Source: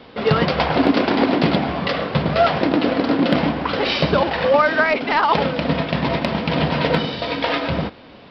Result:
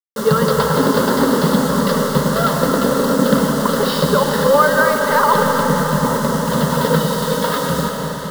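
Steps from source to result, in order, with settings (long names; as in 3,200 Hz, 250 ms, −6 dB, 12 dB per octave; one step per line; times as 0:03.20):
0:05.62–0:06.50: Bessel low-pass filter 2,500 Hz, order 2
bit reduction 5 bits
phaser with its sweep stopped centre 480 Hz, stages 8
convolution reverb RT60 5.1 s, pre-delay 105 ms, DRR 2 dB
level +4 dB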